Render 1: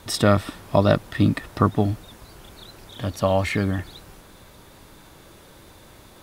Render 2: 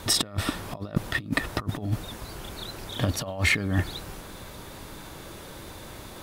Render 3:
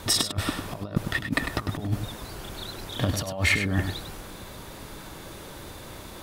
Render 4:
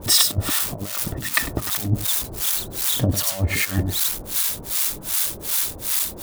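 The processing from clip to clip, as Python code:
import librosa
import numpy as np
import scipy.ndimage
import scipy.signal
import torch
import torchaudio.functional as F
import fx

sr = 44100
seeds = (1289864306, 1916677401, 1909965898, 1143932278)

y1 = fx.over_compress(x, sr, threshold_db=-26.0, ratio=-0.5)
y2 = y1 + 10.0 ** (-8.0 / 20.0) * np.pad(y1, (int(100 * sr / 1000.0), 0))[:len(y1)]
y3 = y2 + 0.5 * 10.0 ** (-18.5 / 20.0) * np.diff(np.sign(y2), prepend=np.sign(y2[:1]))
y3 = fx.harmonic_tremolo(y3, sr, hz=2.6, depth_pct=100, crossover_hz=760.0)
y3 = y3 * 10.0 ** (6.5 / 20.0)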